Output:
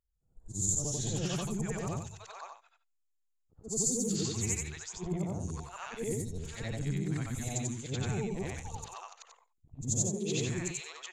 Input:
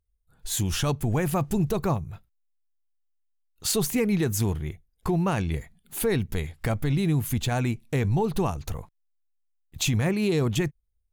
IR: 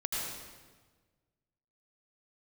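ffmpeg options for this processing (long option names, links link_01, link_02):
-filter_complex "[0:a]afftfilt=real='re':imag='-im':win_size=8192:overlap=0.75,lowpass=frequency=7100:width_type=q:width=7.2,acrossover=split=780|5400[link_01][link_02][link_03];[link_03]adelay=150[link_04];[link_02]adelay=530[link_05];[link_01][link_05][link_04]amix=inputs=3:normalize=0,volume=-5dB"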